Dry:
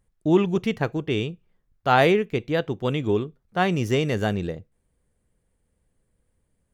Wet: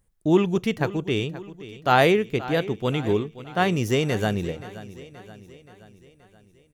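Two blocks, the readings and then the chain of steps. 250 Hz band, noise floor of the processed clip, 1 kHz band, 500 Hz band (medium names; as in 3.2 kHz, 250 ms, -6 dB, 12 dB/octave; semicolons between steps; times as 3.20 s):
0.0 dB, -59 dBFS, +0.5 dB, 0.0 dB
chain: treble shelf 6.8 kHz +8 dB; feedback delay 526 ms, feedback 54%, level -16 dB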